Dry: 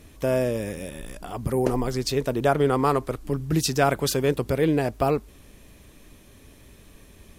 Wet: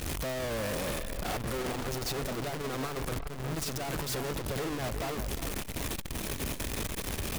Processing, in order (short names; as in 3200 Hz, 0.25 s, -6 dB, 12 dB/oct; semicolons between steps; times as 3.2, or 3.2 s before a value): infinite clipping; limiter -32.5 dBFS, peak gain reduction 23 dB; on a send: dark delay 0.363 s, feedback 53%, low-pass 3000 Hz, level -8.5 dB; on the sum: core saturation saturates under 52 Hz